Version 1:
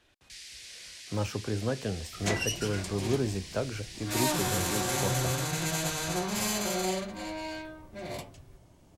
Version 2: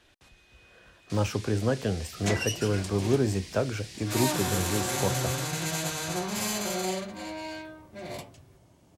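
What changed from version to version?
speech +4.5 dB
first sound: entry +0.80 s
second sound: add high-pass filter 74 Hz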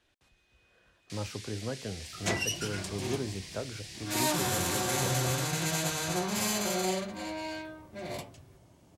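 speech −10.0 dB

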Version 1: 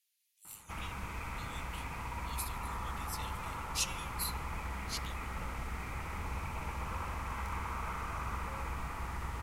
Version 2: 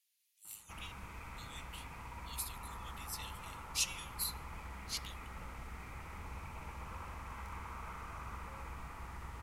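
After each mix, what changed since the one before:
background −7.5 dB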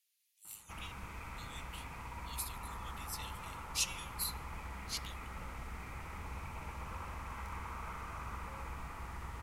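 background: send on

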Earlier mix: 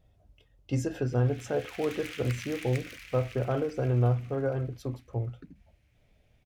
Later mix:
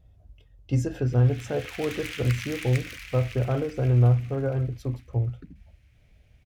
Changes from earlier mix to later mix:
background +5.5 dB
master: add parametric band 60 Hz +10.5 dB 2.6 octaves

